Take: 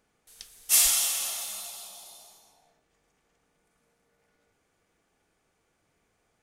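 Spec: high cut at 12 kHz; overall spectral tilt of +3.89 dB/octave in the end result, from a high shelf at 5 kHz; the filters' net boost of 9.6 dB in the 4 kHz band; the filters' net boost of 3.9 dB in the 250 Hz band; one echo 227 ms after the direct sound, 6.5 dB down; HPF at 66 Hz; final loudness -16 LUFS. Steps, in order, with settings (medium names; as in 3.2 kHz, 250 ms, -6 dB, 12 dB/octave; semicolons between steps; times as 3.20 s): high-pass 66 Hz; low-pass 12 kHz; peaking EQ 250 Hz +5 dB; peaking EQ 4 kHz +8 dB; treble shelf 5 kHz +8.5 dB; delay 227 ms -6.5 dB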